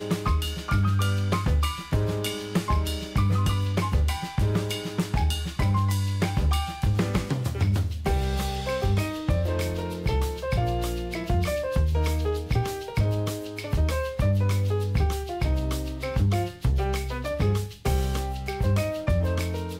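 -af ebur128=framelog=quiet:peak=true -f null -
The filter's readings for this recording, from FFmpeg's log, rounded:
Integrated loudness:
  I:         -26.5 LUFS
  Threshold: -36.5 LUFS
Loudness range:
  LRA:         1.3 LU
  Threshold: -46.5 LUFS
  LRA low:   -27.2 LUFS
  LRA high:  -25.9 LUFS
True peak:
  Peak:      -13.1 dBFS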